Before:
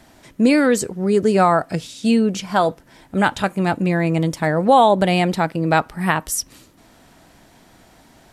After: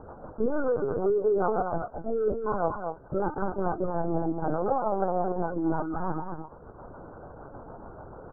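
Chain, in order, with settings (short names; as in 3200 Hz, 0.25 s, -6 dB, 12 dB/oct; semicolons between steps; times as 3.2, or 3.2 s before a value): per-bin compression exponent 0.4; HPF 470 Hz 6 dB/oct; de-esser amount 85%; spectral noise reduction 23 dB; compressor 2:1, threshold -44 dBFS, peak gain reduction 16.5 dB; sample leveller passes 2; rotary speaker horn 6.7 Hz; rippled Chebyshev low-pass 1500 Hz, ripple 3 dB; outdoor echo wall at 39 m, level -6 dB; LPC vocoder at 8 kHz pitch kept; gain +4 dB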